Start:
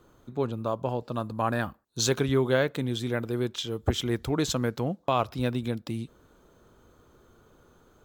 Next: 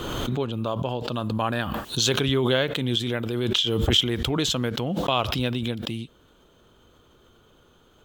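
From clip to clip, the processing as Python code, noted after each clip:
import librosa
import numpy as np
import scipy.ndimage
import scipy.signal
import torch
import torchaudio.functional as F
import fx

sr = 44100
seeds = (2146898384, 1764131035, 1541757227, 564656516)

y = fx.peak_eq(x, sr, hz=3100.0, db=13.0, octaves=0.58)
y = fx.pre_swell(y, sr, db_per_s=23.0)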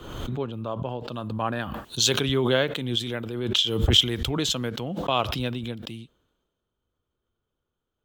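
y = fx.band_widen(x, sr, depth_pct=70)
y = y * 10.0 ** (-2.5 / 20.0)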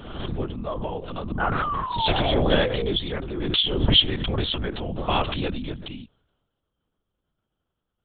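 y = fx.spec_paint(x, sr, seeds[0], shape='fall', start_s=1.39, length_s=1.53, low_hz=440.0, high_hz=1500.0, level_db=-29.0)
y = fx.lpc_vocoder(y, sr, seeds[1], excitation='whisper', order=8)
y = y * 10.0 ** (1.5 / 20.0)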